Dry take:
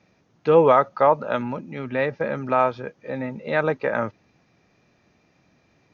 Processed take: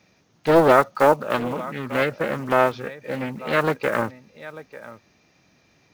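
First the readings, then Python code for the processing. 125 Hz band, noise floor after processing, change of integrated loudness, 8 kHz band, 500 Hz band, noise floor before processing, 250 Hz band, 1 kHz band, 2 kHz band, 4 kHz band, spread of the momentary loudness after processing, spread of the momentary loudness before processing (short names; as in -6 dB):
+1.0 dB, -61 dBFS, +1.0 dB, n/a, +0.5 dB, -64 dBFS, +3.0 dB, +0.5 dB, +4.0 dB, +7.0 dB, 22 LU, 14 LU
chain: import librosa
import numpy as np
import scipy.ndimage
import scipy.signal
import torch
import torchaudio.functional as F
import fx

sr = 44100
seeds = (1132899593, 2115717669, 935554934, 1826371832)

y = fx.block_float(x, sr, bits=7)
y = fx.high_shelf(y, sr, hz=2700.0, db=9.5)
y = y + 10.0 ** (-17.0 / 20.0) * np.pad(y, (int(894 * sr / 1000.0), 0))[:len(y)]
y = fx.doppler_dist(y, sr, depth_ms=0.51)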